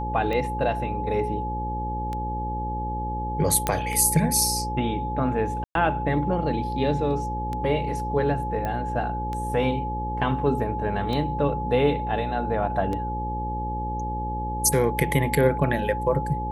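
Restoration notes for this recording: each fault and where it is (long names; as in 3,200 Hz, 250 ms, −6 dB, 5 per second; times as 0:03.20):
mains buzz 60 Hz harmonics 9 −31 dBFS
scratch tick 33 1/3 rpm −18 dBFS
whistle 850 Hz −29 dBFS
0:03.67: click −7 dBFS
0:05.64–0:05.75: drop-out 112 ms
0:08.65: click −17 dBFS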